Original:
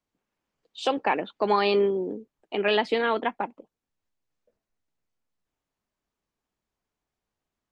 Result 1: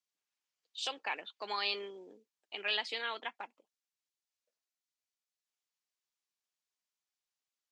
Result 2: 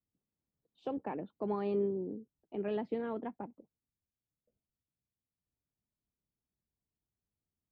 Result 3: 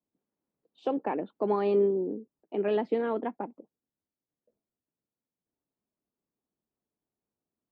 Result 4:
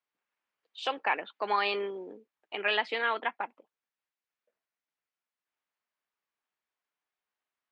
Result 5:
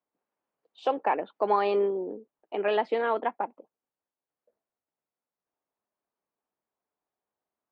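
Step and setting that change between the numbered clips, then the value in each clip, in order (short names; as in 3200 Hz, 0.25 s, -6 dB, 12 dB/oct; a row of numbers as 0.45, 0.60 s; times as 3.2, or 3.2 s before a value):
band-pass, frequency: 5700, 100, 270, 1900, 700 Hz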